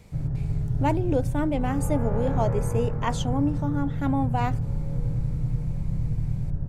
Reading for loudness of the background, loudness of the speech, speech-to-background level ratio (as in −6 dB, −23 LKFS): −29.0 LKFS, −28.0 LKFS, 1.0 dB